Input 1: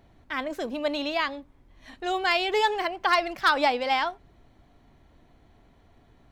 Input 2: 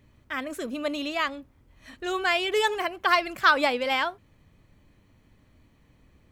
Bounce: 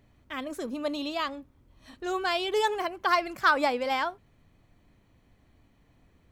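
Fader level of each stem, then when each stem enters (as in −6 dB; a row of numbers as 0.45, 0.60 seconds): −11.0, −4.0 decibels; 0.00, 0.00 seconds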